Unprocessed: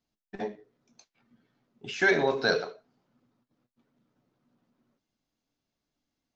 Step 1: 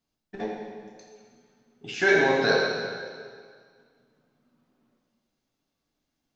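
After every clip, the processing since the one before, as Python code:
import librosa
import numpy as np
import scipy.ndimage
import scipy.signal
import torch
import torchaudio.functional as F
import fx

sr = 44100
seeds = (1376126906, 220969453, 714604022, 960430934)

y = fx.rev_plate(x, sr, seeds[0], rt60_s=1.9, hf_ratio=0.95, predelay_ms=0, drr_db=-2.0)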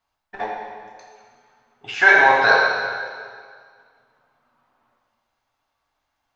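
y = fx.curve_eq(x, sr, hz=(110.0, 170.0, 400.0, 910.0, 5500.0), db=(0, -13, -6, 13, -2))
y = y * librosa.db_to_amplitude(2.5)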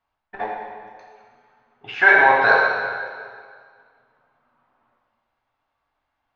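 y = scipy.signal.sosfilt(scipy.signal.butter(2, 2900.0, 'lowpass', fs=sr, output='sos'), x)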